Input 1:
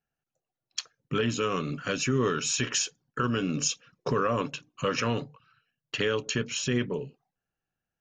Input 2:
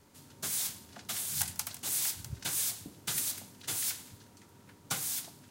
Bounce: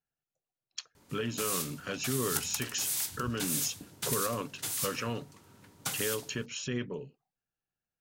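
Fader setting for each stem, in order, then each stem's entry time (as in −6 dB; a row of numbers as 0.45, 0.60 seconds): −7.0, −0.5 decibels; 0.00, 0.95 seconds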